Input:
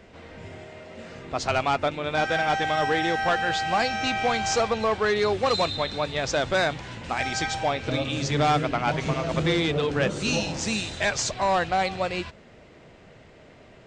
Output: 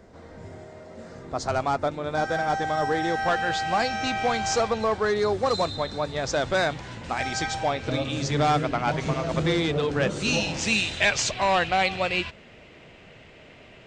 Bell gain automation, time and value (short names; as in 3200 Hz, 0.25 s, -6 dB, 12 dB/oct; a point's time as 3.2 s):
bell 2700 Hz 0.88 oct
2.87 s -13.5 dB
3.35 s -3.5 dB
4.65 s -3.5 dB
5.23 s -10.5 dB
6.06 s -10.5 dB
6.48 s -3 dB
9.95 s -3 dB
10.71 s +8.5 dB